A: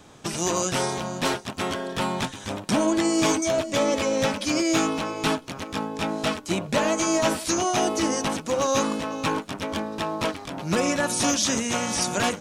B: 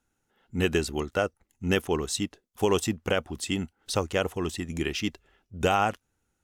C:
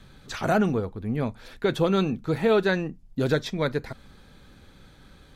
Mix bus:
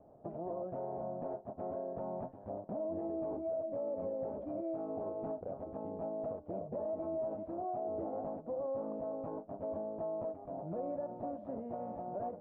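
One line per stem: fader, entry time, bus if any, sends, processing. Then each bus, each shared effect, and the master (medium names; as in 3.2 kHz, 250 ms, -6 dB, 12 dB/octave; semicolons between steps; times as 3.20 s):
-2.0 dB, 0.00 s, no send, compression 2:1, threshold -28 dBFS, peak gain reduction 6 dB
-6.5 dB, 2.35 s, no send, compression, threshold -27 dBFS, peak gain reduction 8.5 dB
mute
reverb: none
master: four-pole ladder low-pass 710 Hz, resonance 70%; peak limiter -31 dBFS, peak gain reduction 10 dB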